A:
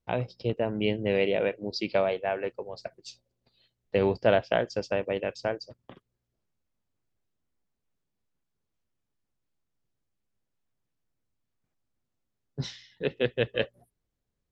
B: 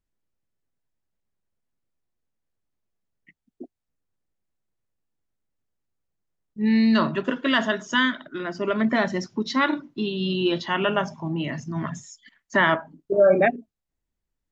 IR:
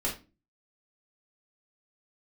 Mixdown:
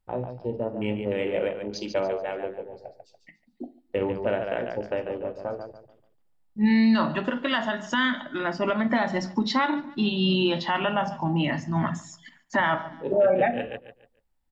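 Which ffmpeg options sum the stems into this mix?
-filter_complex "[0:a]afwtdn=0.0158,volume=0.596,asplit=3[s0][s1][s2];[s1]volume=0.355[s3];[s2]volume=0.562[s4];[1:a]equalizer=f=400:t=o:w=0.33:g=-8,equalizer=f=800:t=o:w=0.33:g=10,equalizer=f=6300:t=o:w=0.33:g=-7,volume=1.26,asplit=3[s5][s6][s7];[s6]volume=0.2[s8];[s7]volume=0.0794[s9];[2:a]atrim=start_sample=2205[s10];[s3][s8]amix=inputs=2:normalize=0[s11];[s11][s10]afir=irnorm=-1:irlink=0[s12];[s4][s9]amix=inputs=2:normalize=0,aecho=0:1:144|288|432|576:1|0.29|0.0841|0.0244[s13];[s0][s5][s12][s13]amix=inputs=4:normalize=0,alimiter=limit=0.224:level=0:latency=1:release=254"

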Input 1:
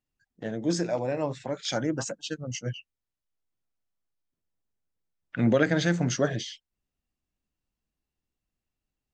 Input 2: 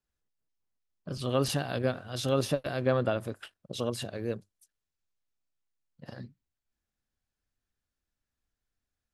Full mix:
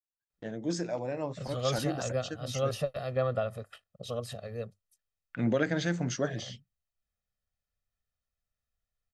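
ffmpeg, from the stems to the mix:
-filter_complex "[0:a]agate=range=0.0708:threshold=0.00355:ratio=16:detection=peak,volume=0.531[s0];[1:a]equalizer=f=10000:w=0.4:g=-3,aecho=1:1:1.6:1,adelay=300,volume=0.473[s1];[s0][s1]amix=inputs=2:normalize=0"

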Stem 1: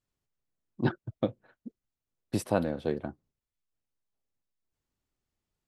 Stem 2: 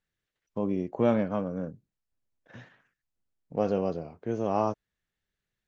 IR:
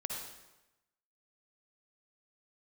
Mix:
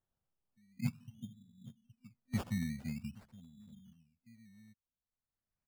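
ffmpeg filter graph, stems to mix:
-filter_complex "[0:a]volume=0.708,asplit=3[s0][s1][s2];[s1]volume=0.106[s3];[s2]volume=0.106[s4];[1:a]acrossover=split=420 2100:gain=0.178 1 0.126[s5][s6][s7];[s5][s6][s7]amix=inputs=3:normalize=0,volume=0.282,afade=t=in:st=1.23:d=0.51:silence=0.298538,asplit=2[s8][s9];[s9]apad=whole_len=250413[s10];[s0][s10]sidechaincompress=threshold=0.00158:ratio=6:attack=7.1:release=771[s11];[2:a]atrim=start_sample=2205[s12];[s3][s12]afir=irnorm=-1:irlink=0[s13];[s4]aecho=0:1:819:1[s14];[s11][s8][s13][s14]amix=inputs=4:normalize=0,afftfilt=real='re*(1-between(b*sr/4096,250,3600))':imag='im*(1-between(b*sr/4096,250,3600))':win_size=4096:overlap=0.75,equalizer=f=1600:t=o:w=0.3:g=13.5,acrusher=samples=17:mix=1:aa=0.000001:lfo=1:lforange=10.2:lforate=0.48"

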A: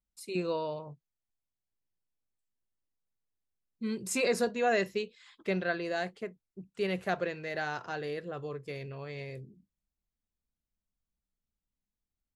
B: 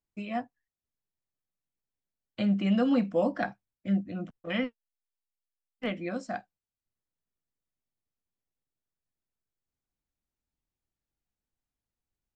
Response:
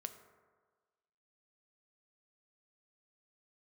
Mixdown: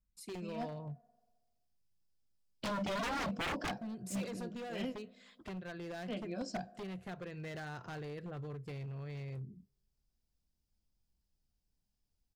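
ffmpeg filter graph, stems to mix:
-filter_complex "[0:a]bass=f=250:g=13,treble=f=4000:g=0,acompressor=threshold=0.0178:ratio=8,aeval=exprs='0.0211*(abs(mod(val(0)/0.0211+3,4)-2)-1)':c=same,volume=0.562,asplit=3[s0][s1][s2];[s1]volume=0.0708[s3];[1:a]equalizer=f=1250:t=o:w=0.33:g=-11,equalizer=f=2000:t=o:w=0.33:g=-12,equalizer=f=5000:t=o:w=0.33:g=10,adelay=250,volume=0.841,asplit=2[s4][s5];[s5]volume=0.316[s6];[s2]apad=whole_len=555669[s7];[s4][s7]sidechaincompress=threshold=0.002:ratio=16:attack=9:release=306[s8];[2:a]atrim=start_sample=2205[s9];[s3][s6]amix=inputs=2:normalize=0[s10];[s10][s9]afir=irnorm=-1:irlink=0[s11];[s0][s8][s11]amix=inputs=3:normalize=0,aeval=exprs='0.0266*(abs(mod(val(0)/0.0266+3,4)-2)-1)':c=same"

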